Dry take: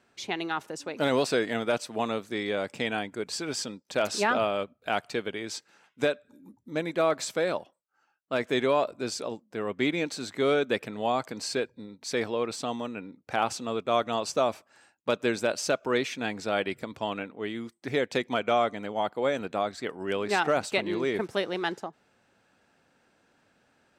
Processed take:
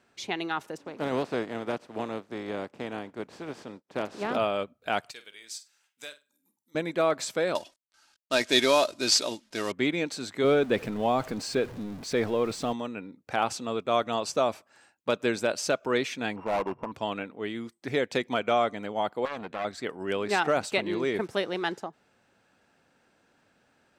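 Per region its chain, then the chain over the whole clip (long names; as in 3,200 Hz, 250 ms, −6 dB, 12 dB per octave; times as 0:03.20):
0:00.76–0:04.34: compressing power law on the bin magnitudes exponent 0.47 + resonant band-pass 320 Hz, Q 0.62
0:05.11–0:06.75: first-order pre-emphasis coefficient 0.97 + flutter between parallel walls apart 8.3 metres, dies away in 0.24 s
0:07.55–0:09.72: variable-slope delta modulation 64 kbit/s + parametric band 4,900 Hz +14.5 dB 2 octaves + comb filter 3.2 ms, depth 40%
0:10.44–0:12.73: converter with a step at zero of −39.5 dBFS + spectral tilt −1.5 dB per octave
0:16.36–0:16.92: samples sorted by size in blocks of 16 samples + low-pass with resonance 980 Hz, resonance Q 6.6 + gain into a clipping stage and back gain 23.5 dB
0:19.25–0:19.65: high-shelf EQ 4,200 Hz −10.5 dB + gain into a clipping stage and back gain 22 dB + saturating transformer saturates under 1,100 Hz
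whole clip: no processing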